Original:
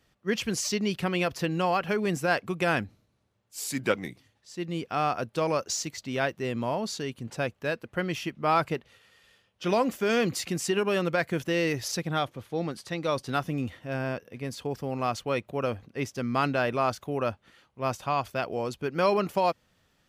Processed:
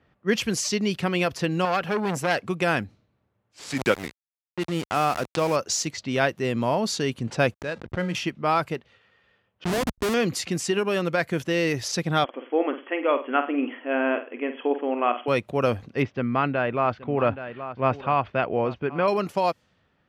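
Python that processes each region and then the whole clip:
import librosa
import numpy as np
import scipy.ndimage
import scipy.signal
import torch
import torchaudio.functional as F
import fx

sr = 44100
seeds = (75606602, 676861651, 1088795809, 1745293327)

y = fx.chain(x, sr, fx.highpass(hz=62.0, slope=12),
    fx.transformer_sat(knee_hz=1800.0), at=(1.65, 2.43))
y = fx.chain(y, sr, fx.sample_gate(floor_db=-34.5),
    fx.pre_swell(db_per_s=120.0), at=(3.59, 5.56))
y = fx.chain(y, sr, fx.comb_fb(f0_hz=180.0, decay_s=0.49, harmonics='odd', damping=0.0, mix_pct=70),
    fx.backlash(play_db=-49.5),
    fx.pre_swell(db_per_s=88.0), at=(7.54, 8.15))
y = fx.chain(y, sr, fx.peak_eq(hz=81.0, db=12.0, octaves=0.73),
    fx.schmitt(flips_db=-25.0),
    fx.sustainer(db_per_s=41.0), at=(9.64, 10.14))
y = fx.chain(y, sr, fx.brickwall_bandpass(low_hz=240.0, high_hz=3400.0),
    fx.room_flutter(wall_m=8.4, rt60_s=0.31), at=(12.24, 15.28))
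y = fx.chain(y, sr, fx.lowpass(hz=2900.0, slope=24),
    fx.echo_single(ms=824, db=-16.5), at=(16.02, 19.08))
y = fx.rider(y, sr, range_db=4, speed_s=0.5)
y = fx.env_lowpass(y, sr, base_hz=2000.0, full_db=-26.0)
y = scipy.signal.sosfilt(scipy.signal.butter(2, 54.0, 'highpass', fs=sr, output='sos'), y)
y = y * 10.0 ** (4.5 / 20.0)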